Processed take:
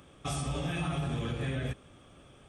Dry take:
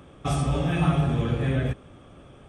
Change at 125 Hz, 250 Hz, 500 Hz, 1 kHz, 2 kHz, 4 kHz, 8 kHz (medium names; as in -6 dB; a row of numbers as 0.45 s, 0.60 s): -10.0 dB, -10.0 dB, -9.0 dB, -8.5 dB, -5.5 dB, -3.0 dB, no reading